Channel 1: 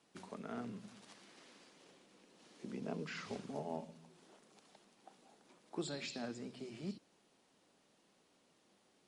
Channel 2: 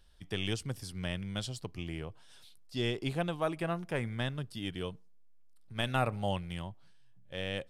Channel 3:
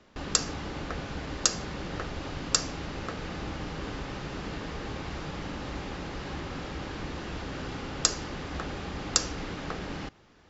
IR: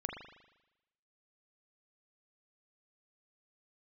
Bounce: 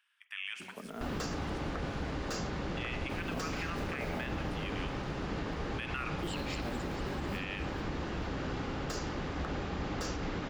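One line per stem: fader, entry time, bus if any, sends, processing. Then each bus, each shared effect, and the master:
+2.0 dB, 0.45 s, no send, echo send −12 dB, noise that follows the level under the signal 22 dB
−4.0 dB, 0.00 s, muted 0:00.90–0:02.77, send −5 dB, no echo send, Butterworth high-pass 1,100 Hz 36 dB per octave; high shelf with overshoot 3,300 Hz −8.5 dB, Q 3
+0.5 dB, 0.85 s, no send, no echo send, high-shelf EQ 2,900 Hz −7 dB; slew-rate limiting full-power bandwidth 75 Hz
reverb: on, RT60 0.95 s, pre-delay 39 ms
echo: repeating echo 442 ms, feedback 47%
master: brickwall limiter −26.5 dBFS, peak gain reduction 9 dB

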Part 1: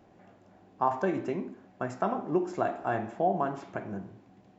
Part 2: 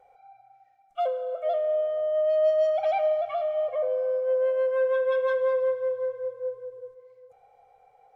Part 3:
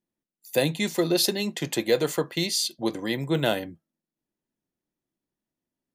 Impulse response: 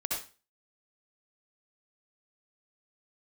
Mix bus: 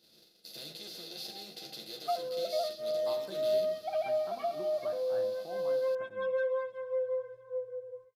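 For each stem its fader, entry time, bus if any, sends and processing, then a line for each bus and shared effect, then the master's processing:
−19.0 dB, 2.25 s, no send, no processing
−2.0 dB, 1.10 s, no send, downward compressor 2 to 1, threshold −27 dBFS, peak gain reduction 5 dB; through-zero flanger with one copy inverted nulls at 0.3 Hz, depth 5.1 ms
−19.0 dB, 0.00 s, no send, compressor on every frequency bin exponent 0.2; octave-band graphic EQ 125/250/500/1,000/2,000/4,000/8,000 Hz −9/−10/−8/−11/−12/+8/−12 dB; string-ensemble chorus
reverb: not used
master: noise gate −55 dBFS, range −13 dB

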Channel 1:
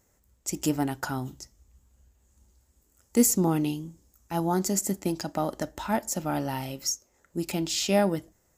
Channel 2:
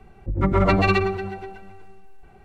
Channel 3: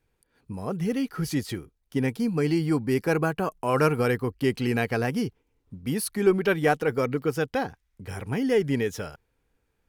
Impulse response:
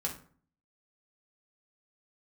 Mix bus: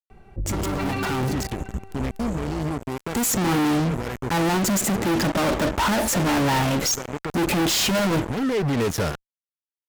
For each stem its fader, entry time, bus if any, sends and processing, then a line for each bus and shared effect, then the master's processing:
+1.5 dB, 0.00 s, bus A, no send, adaptive Wiener filter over 9 samples; automatic gain control gain up to 14 dB
0.0 dB, 0.10 s, no bus, no send, no processing
−2.0 dB, 0.00 s, bus A, no send, brickwall limiter −22 dBFS, peak gain reduction 12.5 dB; low-shelf EQ 440 Hz +7 dB; automatic ducking −15 dB, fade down 1.90 s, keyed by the first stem
bus A: 0.0 dB, fuzz pedal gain 40 dB, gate −41 dBFS; brickwall limiter −16 dBFS, peak gain reduction 6.5 dB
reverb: not used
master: brickwall limiter −18.5 dBFS, peak gain reduction 13.5 dB

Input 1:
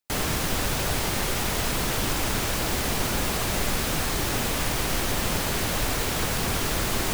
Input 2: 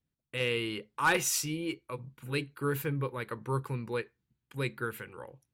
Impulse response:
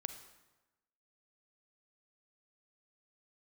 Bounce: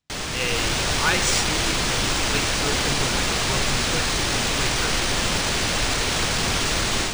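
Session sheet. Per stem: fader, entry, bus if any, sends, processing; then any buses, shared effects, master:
−5.5 dB, 0.00 s, no send, low-pass filter 9,600 Hz 12 dB per octave; automatic gain control gain up to 7 dB
+0.5 dB, 0.00 s, no send, no processing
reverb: not used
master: high-shelf EQ 2,100 Hz +9.5 dB; linearly interpolated sample-rate reduction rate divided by 3×

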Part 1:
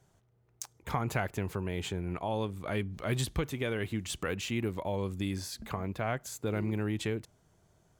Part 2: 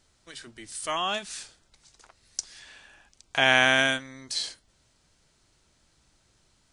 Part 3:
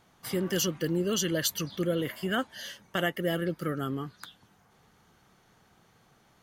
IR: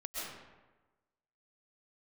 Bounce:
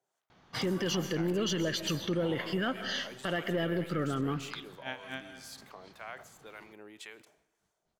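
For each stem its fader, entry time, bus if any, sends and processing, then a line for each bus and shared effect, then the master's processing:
−6.5 dB, 0.00 s, no bus, send −22 dB, high-pass filter 570 Hz 12 dB per octave; two-band tremolo in antiphase 1.9 Hz, depth 70%, crossover 770 Hz; level that may fall only so fast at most 96 dB per second
−17.5 dB, 1.40 s, bus A, send −10 dB, parametric band 190 Hz +12.5 dB; tremolo with a sine in dB 4 Hz, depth 27 dB
+3.0 dB, 0.30 s, bus A, send −19.5 dB, leveller curve on the samples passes 1
bus A: 0.0 dB, low-pass filter 5,500 Hz 24 dB per octave; downward compressor, threshold −27 dBFS, peak gain reduction 8.5 dB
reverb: on, RT60 1.2 s, pre-delay 90 ms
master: brickwall limiter −23 dBFS, peak gain reduction 7.5 dB

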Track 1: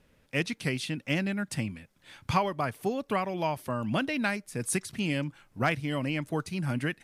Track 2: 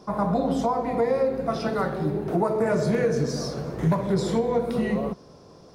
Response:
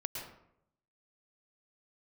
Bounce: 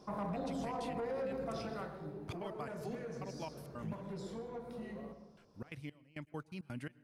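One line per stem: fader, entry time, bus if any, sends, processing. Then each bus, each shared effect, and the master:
−13.0 dB, 0.00 s, muted 0:04.18–0:05.37, send −21 dB, gate pattern "...x.x.x.xx" 168 BPM −24 dB
0:01.52 −11.5 dB → 0:01.95 −22 dB, 0.00 s, send −5 dB, hum removal 62.37 Hz, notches 35; soft clipping −19 dBFS, distortion −16 dB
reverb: on, RT60 0.75 s, pre-delay 102 ms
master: brickwall limiter −32.5 dBFS, peak gain reduction 9 dB

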